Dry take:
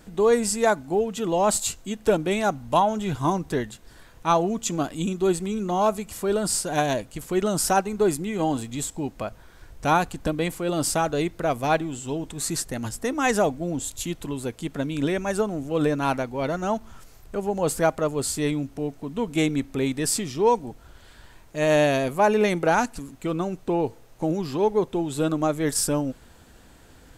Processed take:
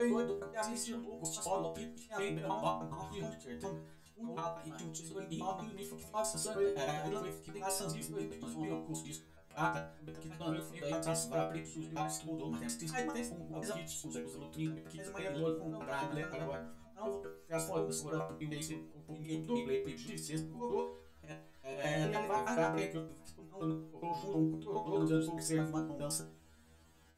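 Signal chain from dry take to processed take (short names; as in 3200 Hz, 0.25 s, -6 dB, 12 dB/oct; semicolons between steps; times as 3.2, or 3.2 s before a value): slices in reverse order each 0.104 s, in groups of 4; auto swell 0.113 s; metallic resonator 78 Hz, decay 0.56 s, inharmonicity 0.002; gain -2 dB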